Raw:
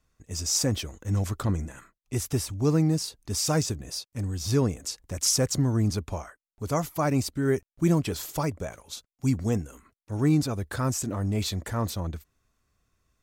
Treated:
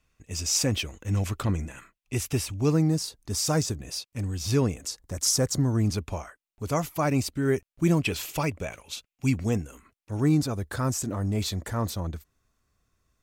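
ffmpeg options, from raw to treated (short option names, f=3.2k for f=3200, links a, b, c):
-af "asetnsamples=n=441:p=0,asendcmd='2.72 equalizer g -1.5;3.8 equalizer g 6;4.87 equalizer g -5;5.75 equalizer g 5;8.03 equalizer g 12.5;9.45 equalizer g 5;10.2 equalizer g -1.5',equalizer=f=2.6k:t=o:w=0.62:g=9"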